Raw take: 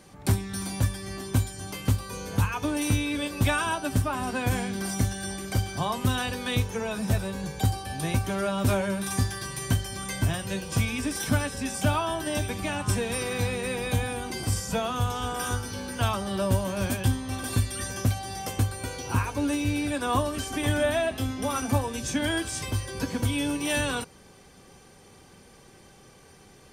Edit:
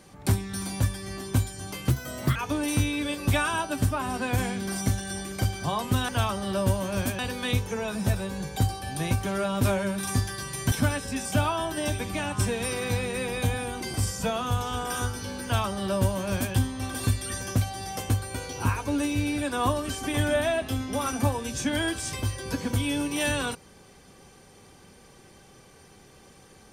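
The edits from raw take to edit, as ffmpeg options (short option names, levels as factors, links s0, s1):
-filter_complex "[0:a]asplit=6[s0][s1][s2][s3][s4][s5];[s0]atrim=end=1.904[s6];[s1]atrim=start=1.9:end=2.49,asetpts=PTS-STARTPTS,asetrate=56889,aresample=44100[s7];[s2]atrim=start=2.486:end=6.222[s8];[s3]atrim=start=15.928:end=17.032[s9];[s4]atrim=start=6.218:end=9.752[s10];[s5]atrim=start=11.208[s11];[s6][s7]acrossfade=d=0.004:c1=hsin:c2=hsin[s12];[s12][s8]acrossfade=d=0.004:c1=hsin:c2=hsin[s13];[s13][s9]acrossfade=d=0.004:c1=hsin:c2=hsin[s14];[s14][s10]acrossfade=d=0.004:c1=hsin:c2=hsin[s15];[s15][s11]acrossfade=d=0.004:c1=hsin:c2=hsin"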